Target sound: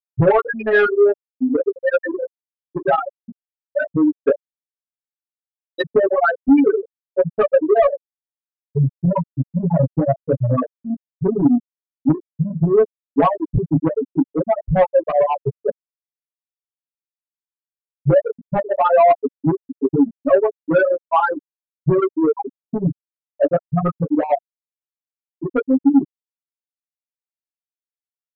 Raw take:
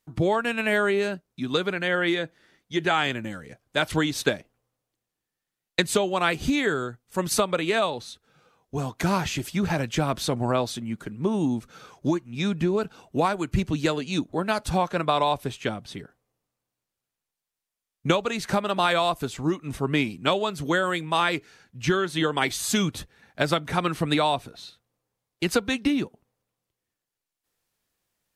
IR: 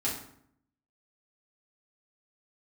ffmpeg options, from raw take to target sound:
-filter_complex "[0:a]asplit=2[link_01][link_02];[link_02]alimiter=limit=-15.5dB:level=0:latency=1:release=187,volume=-3dB[link_03];[link_01][link_03]amix=inputs=2:normalize=0,adynamicequalizer=threshold=0.0158:dfrequency=550:dqfactor=2.8:tfrequency=550:tqfactor=2.8:attack=5:release=100:ratio=0.375:range=2.5:mode=boostabove:tftype=bell,flanger=delay=18:depth=5.2:speed=0.15,aecho=1:1:91:0.211,afftfilt=real='re*gte(hypot(re,im),0.447)':imag='im*gte(hypot(re,im),0.447)':win_size=1024:overlap=0.75,asoftclip=type=tanh:threshold=-18dB,lowpass=3200,aecho=1:1:7.2:0.79,volume=8dB"

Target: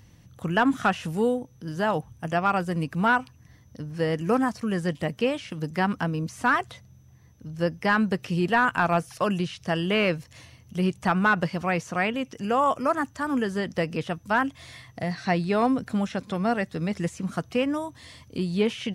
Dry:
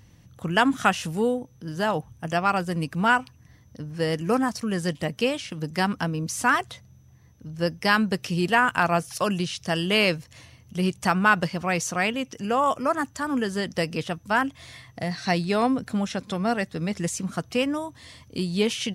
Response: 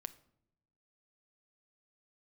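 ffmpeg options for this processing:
-filter_complex "[0:a]asoftclip=type=hard:threshold=-13.5dB,acrossover=split=2800[link_01][link_02];[link_02]acompressor=threshold=-44dB:ratio=4:attack=1:release=60[link_03];[link_01][link_03]amix=inputs=2:normalize=0"

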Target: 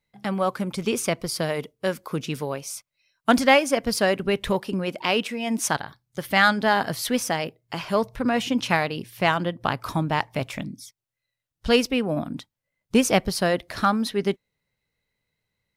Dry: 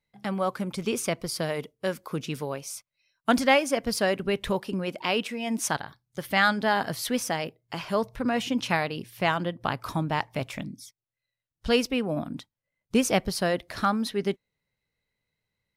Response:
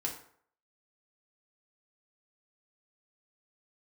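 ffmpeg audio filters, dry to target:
-af "aeval=exprs='0.398*(cos(1*acos(clip(val(0)/0.398,-1,1)))-cos(1*PI/2))+0.00562*(cos(7*acos(clip(val(0)/0.398,-1,1)))-cos(7*PI/2))':channel_layout=same,apsyclip=10dB,volume=-6dB"

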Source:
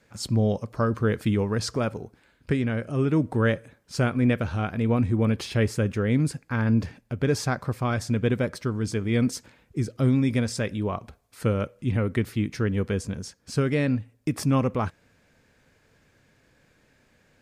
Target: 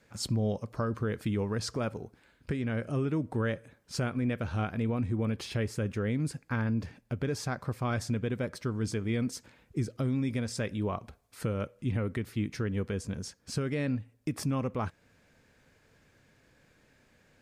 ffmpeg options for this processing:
ffmpeg -i in.wav -af "alimiter=limit=-19.5dB:level=0:latency=1:release=388,volume=-2dB" out.wav

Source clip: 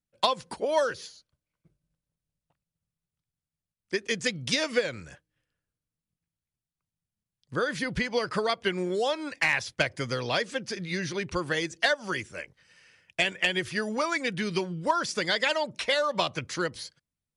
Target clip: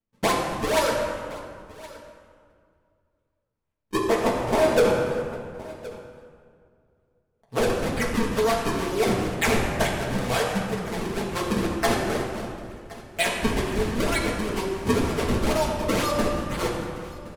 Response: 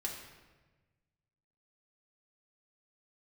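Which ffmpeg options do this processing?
-filter_complex "[0:a]equalizer=frequency=200:width_type=o:width=0.33:gain=-11,equalizer=frequency=800:width_type=o:width=0.33:gain=4,equalizer=frequency=4000:width_type=o:width=0.33:gain=-9,acrusher=samples=36:mix=1:aa=0.000001:lfo=1:lforange=57.6:lforate=2.1,asettb=1/sr,asplit=3[link_01][link_02][link_03];[link_01]atrim=end=3.954[link_04];[link_02]atrim=start=3.95:end=7.6,asetpts=PTS-STARTPTS,afade=type=in:duration=0.004:curve=qsin,afade=type=out:start_time=3.646:duration=0.004:curve=qsin,equalizer=frequency=690:width=1.1:gain=9.5[link_05];[link_03]atrim=start=7.596[link_06];[link_04][link_05]acrossfade=duration=0.004:curve1=hsin:curve2=qsin[link_07];[link_07][link_06]acrossfade=duration=0.004:curve1=qsin:curve2=hsin,aecho=1:1:1068:0.0891[link_08];[1:a]atrim=start_sample=2205,asetrate=25578,aresample=44100[link_09];[link_08][link_09]afir=irnorm=-1:irlink=0,asoftclip=type=tanh:threshold=-11dB"

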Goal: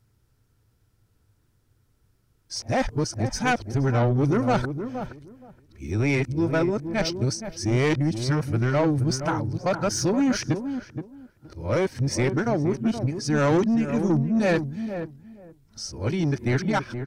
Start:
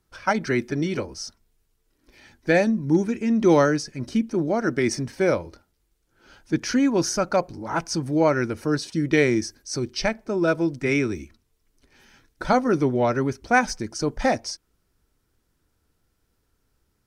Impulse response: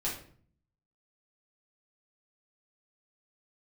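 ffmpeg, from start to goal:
-filter_complex "[0:a]areverse,equalizer=frequency=110:width_type=o:width=0.71:gain=14.5,asoftclip=type=tanh:threshold=-16.5dB,asplit=2[link_01][link_02];[link_02]adelay=471,lowpass=frequency=950:poles=1,volume=-8dB,asplit=2[link_03][link_04];[link_04]adelay=471,lowpass=frequency=950:poles=1,volume=0.18,asplit=2[link_05][link_06];[link_06]adelay=471,lowpass=frequency=950:poles=1,volume=0.18[link_07];[link_01][link_03][link_05][link_07]amix=inputs=4:normalize=0"

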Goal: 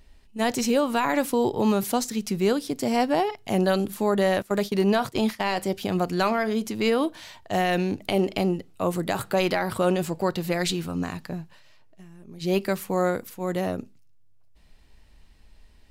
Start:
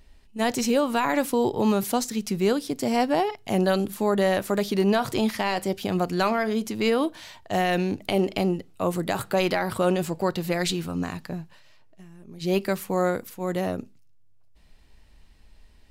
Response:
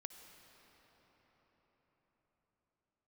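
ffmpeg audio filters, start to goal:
-filter_complex "[0:a]asettb=1/sr,asplit=3[link_01][link_02][link_03];[link_01]atrim=end=4.424[link_04];[link_02]atrim=start=4.42:end=5.54,asetpts=PTS-STARTPTS,afade=type=in:duration=0.004:curve=qsin,afade=type=out:start_time=1.116:duration=0.004:curve=qsin,agate=range=-16dB:threshold=-27dB:ratio=16:detection=peak[link_05];[link_03]atrim=start=5.536[link_06];[link_04][link_05]acrossfade=duration=0.004:curve1=hsin:curve2=qsin[link_07];[link_07][link_06]acrossfade=duration=0.004:curve1=qsin:curve2=hsin"

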